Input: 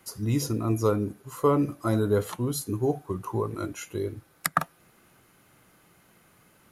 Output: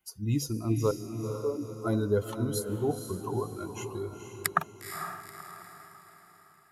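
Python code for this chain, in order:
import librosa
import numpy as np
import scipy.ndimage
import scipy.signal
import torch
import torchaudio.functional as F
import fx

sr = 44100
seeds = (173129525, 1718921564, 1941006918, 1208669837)

p1 = fx.bin_expand(x, sr, power=1.5)
p2 = fx.ladder_bandpass(p1, sr, hz=410.0, resonance_pct=65, at=(0.91, 1.72))
p3 = p2 + fx.echo_diffused(p2, sr, ms=479, feedback_pct=46, wet_db=-7.0, dry=0)
y = p3 * 10.0 ** (-1.0 / 20.0)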